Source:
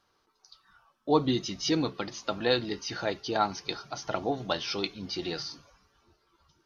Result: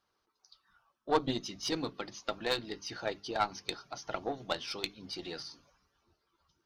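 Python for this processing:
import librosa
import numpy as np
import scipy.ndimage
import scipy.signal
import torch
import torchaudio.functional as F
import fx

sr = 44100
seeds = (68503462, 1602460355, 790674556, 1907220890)

y = fx.hum_notches(x, sr, base_hz=50, count=6)
y = fx.cheby_harmonics(y, sr, harmonics=(4, 6, 7), levels_db=(-15, -27, -28), full_scale_db=-11.0)
y = fx.hpss(y, sr, part='percussive', gain_db=6)
y = y * 10.0 ** (-8.5 / 20.0)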